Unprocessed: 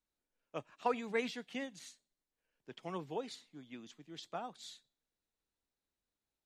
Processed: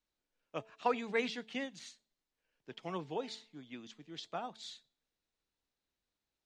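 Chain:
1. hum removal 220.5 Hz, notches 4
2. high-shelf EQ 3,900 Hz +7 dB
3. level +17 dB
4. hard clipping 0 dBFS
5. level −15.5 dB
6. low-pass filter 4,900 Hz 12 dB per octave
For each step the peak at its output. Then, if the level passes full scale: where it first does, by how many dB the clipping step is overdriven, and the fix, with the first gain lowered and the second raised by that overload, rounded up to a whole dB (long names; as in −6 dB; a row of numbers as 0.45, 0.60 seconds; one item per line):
−20.5, −20.0, −3.0, −3.0, −18.5, −18.5 dBFS
no step passes full scale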